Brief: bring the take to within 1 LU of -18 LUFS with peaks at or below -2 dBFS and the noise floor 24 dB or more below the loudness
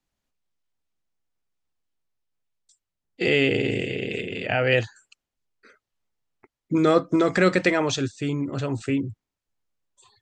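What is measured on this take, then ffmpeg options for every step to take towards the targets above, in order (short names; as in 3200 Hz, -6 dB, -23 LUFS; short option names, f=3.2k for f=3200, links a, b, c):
loudness -23.5 LUFS; peak -6.0 dBFS; loudness target -18.0 LUFS
-> -af "volume=5.5dB,alimiter=limit=-2dB:level=0:latency=1"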